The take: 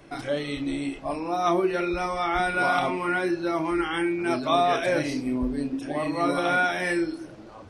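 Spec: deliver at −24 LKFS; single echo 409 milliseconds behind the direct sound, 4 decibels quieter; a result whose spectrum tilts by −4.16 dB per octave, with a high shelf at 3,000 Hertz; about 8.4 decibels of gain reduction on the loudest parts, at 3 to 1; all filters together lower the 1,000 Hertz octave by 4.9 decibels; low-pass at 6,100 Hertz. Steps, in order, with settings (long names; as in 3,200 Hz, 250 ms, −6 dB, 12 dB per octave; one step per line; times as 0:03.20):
low-pass filter 6,100 Hz
parametric band 1,000 Hz −7.5 dB
high-shelf EQ 3,000 Hz −4 dB
downward compressor 3 to 1, threshold −32 dBFS
single-tap delay 409 ms −4 dB
level +9 dB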